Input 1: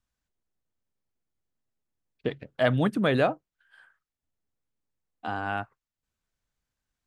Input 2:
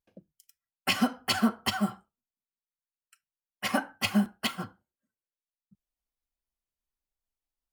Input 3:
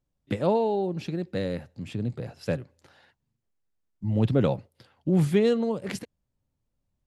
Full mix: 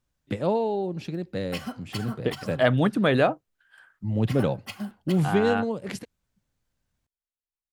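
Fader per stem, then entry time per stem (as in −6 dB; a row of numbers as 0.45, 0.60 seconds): +2.5, −9.5, −1.0 decibels; 0.00, 0.65, 0.00 seconds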